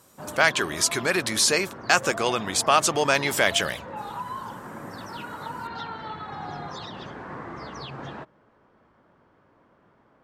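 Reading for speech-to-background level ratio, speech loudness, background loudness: 14.5 dB, -22.5 LUFS, -37.0 LUFS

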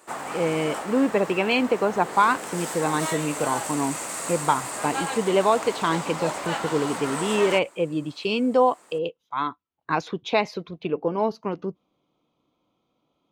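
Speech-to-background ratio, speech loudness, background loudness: 6.0 dB, -25.0 LUFS, -31.0 LUFS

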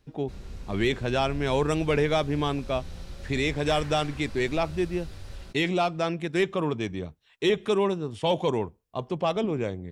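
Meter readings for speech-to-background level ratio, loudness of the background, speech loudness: 15.0 dB, -42.5 LUFS, -27.5 LUFS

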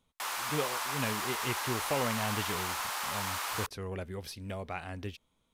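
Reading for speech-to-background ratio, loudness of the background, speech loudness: -4.0 dB, -34.0 LUFS, -38.0 LUFS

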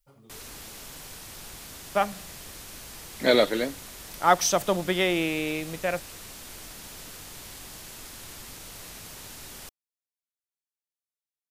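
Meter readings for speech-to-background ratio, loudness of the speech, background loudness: 15.5 dB, -25.5 LUFS, -41.0 LUFS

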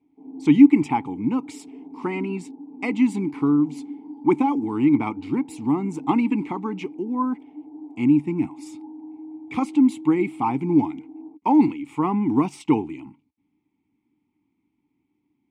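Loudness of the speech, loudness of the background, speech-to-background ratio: -22.0 LUFS, -40.0 LUFS, 18.0 dB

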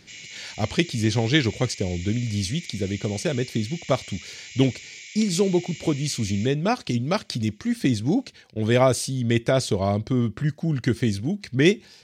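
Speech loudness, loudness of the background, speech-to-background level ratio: -24.0 LUFS, -39.0 LUFS, 15.0 dB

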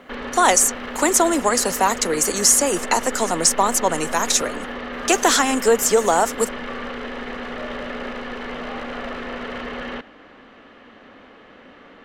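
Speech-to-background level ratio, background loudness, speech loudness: 12.5 dB, -30.5 LUFS, -18.0 LUFS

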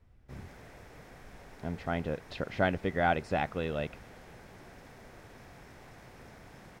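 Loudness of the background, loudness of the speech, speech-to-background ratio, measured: -52.5 LUFS, -33.0 LUFS, 19.5 dB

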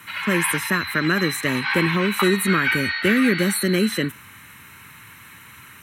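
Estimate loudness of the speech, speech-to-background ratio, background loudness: -22.0 LUFS, 2.5 dB, -24.5 LUFS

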